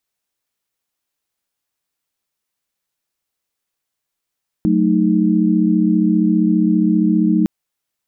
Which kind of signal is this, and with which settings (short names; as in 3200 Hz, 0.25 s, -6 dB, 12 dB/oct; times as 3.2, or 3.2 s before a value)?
chord F#3/A3/D#4 sine, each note -16 dBFS 2.81 s